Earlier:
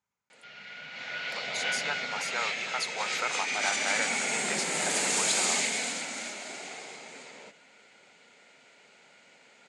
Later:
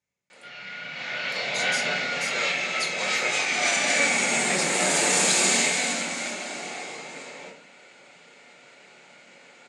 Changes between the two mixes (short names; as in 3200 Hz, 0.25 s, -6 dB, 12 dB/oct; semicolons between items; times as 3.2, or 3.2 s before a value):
speech: add band shelf 1100 Hz -10.5 dB 1.1 oct; reverb: on, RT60 0.40 s